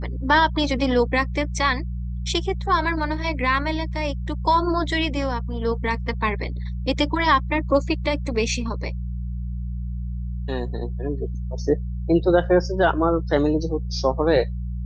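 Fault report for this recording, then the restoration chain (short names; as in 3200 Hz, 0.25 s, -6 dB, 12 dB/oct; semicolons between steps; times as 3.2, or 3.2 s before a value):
hum 60 Hz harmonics 3 -28 dBFS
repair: de-hum 60 Hz, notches 3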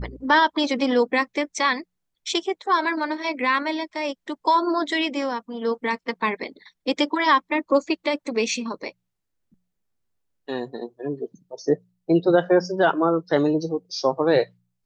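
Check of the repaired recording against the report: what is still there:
none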